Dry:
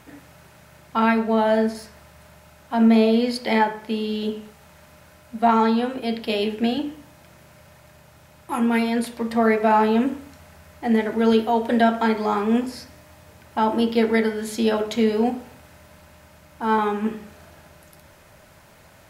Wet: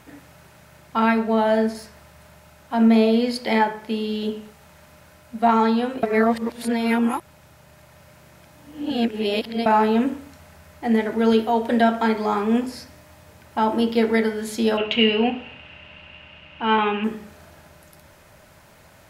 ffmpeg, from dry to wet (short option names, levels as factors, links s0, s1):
-filter_complex "[0:a]asettb=1/sr,asplit=3[s0][s1][s2];[s0]atrim=end=14.774[s3];[s1]atrim=start=14.77:end=17.04,asetpts=PTS-STARTPTS,afade=t=in:d=0.004:c=qsin,afade=t=out:st=2.266:d=0.004:c=qsin,lowpass=f=2800:t=q:w=13[s4];[s2]atrim=start=17.036[s5];[s3][s4]acrossfade=d=0.004:c1=hsin:c2=qsin[s6];[s6][s5]acrossfade=d=0.004:c1=qsin:c2=hsin,asplit=3[s7][s8][s9];[s7]atrim=end=6.032[s10];[s8]atrim=start=6.028:end=9.662,asetpts=PTS-STARTPTS,areverse[s11];[s9]atrim=start=9.658[s12];[s10][s11]acrossfade=d=0.004:c1=hsin:c2=hsin[s13];[s13][s12]acrossfade=d=0.004:c1=hsin:c2=hsin"